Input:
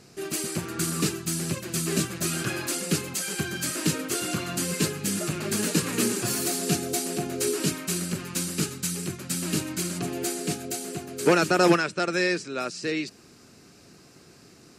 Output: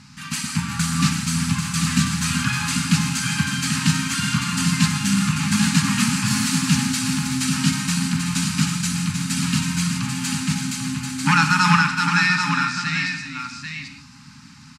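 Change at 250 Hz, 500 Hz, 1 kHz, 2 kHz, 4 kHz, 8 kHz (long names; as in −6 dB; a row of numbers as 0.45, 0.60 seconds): +7.0 dB, below −30 dB, +8.0 dB, +9.5 dB, +8.0 dB, +4.0 dB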